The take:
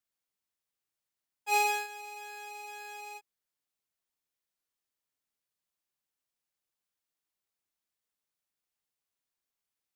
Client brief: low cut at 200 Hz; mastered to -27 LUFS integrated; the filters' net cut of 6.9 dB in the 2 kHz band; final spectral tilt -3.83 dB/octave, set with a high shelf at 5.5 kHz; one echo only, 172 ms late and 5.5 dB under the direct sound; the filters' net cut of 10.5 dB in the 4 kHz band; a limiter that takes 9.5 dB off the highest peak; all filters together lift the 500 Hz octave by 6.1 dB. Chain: high-pass 200 Hz; peaking EQ 500 Hz +8.5 dB; peaking EQ 2 kHz -4.5 dB; peaking EQ 4 kHz -8.5 dB; treble shelf 5.5 kHz -7.5 dB; peak limiter -27 dBFS; delay 172 ms -5.5 dB; trim +11.5 dB

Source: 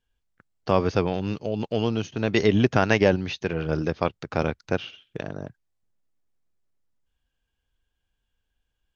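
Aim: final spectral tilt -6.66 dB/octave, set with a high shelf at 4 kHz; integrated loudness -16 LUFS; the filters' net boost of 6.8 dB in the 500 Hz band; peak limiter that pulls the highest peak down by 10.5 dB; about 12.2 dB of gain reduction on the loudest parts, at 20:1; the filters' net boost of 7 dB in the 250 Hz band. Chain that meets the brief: peaking EQ 250 Hz +7.5 dB; peaking EQ 500 Hz +6 dB; treble shelf 4 kHz -5 dB; compression 20:1, threshold -19 dBFS; trim +14 dB; peak limiter -3.5 dBFS

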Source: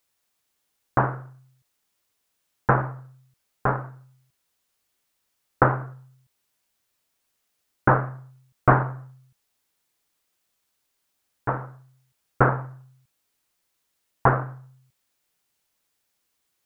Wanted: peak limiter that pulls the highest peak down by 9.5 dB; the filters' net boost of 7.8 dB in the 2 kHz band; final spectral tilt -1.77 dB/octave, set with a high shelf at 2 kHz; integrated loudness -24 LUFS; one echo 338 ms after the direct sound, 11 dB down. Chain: treble shelf 2 kHz +5 dB; peaking EQ 2 kHz +9 dB; peak limiter -7.5 dBFS; delay 338 ms -11 dB; trim +2.5 dB

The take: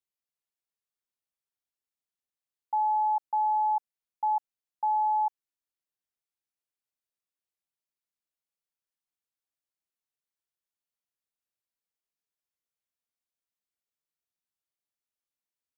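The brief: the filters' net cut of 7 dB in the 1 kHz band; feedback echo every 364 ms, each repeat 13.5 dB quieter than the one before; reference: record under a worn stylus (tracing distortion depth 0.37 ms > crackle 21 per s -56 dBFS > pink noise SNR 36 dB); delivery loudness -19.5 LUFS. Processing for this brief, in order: peaking EQ 1 kHz -8.5 dB; feedback delay 364 ms, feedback 21%, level -13.5 dB; tracing distortion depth 0.37 ms; crackle 21 per s -56 dBFS; pink noise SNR 36 dB; trim +16.5 dB

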